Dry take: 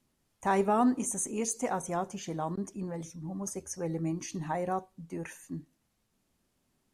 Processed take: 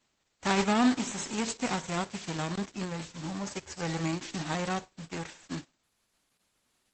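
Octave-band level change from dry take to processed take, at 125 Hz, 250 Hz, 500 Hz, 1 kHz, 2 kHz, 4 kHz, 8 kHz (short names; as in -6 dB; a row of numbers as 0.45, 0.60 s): +2.0, +2.0, -2.5, -1.0, +7.0, +13.5, -2.5 dB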